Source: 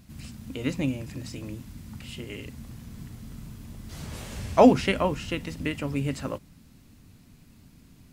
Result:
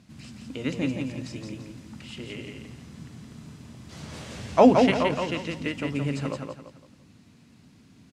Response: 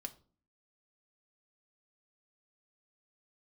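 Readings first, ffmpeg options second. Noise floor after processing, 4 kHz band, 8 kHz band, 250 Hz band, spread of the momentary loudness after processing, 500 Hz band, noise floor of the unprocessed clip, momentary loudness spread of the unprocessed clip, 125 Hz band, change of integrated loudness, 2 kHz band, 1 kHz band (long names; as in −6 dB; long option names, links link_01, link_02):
−56 dBFS, +1.5 dB, −1.5 dB, +1.0 dB, 25 LU, +1.5 dB, −55 dBFS, 23 LU, −0.5 dB, +1.5 dB, +1.5 dB, +1.5 dB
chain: -filter_complex "[0:a]highpass=120,lowpass=7100,asplit=2[link_01][link_02];[link_02]aecho=0:1:170|340|510|680:0.596|0.197|0.0649|0.0214[link_03];[link_01][link_03]amix=inputs=2:normalize=0"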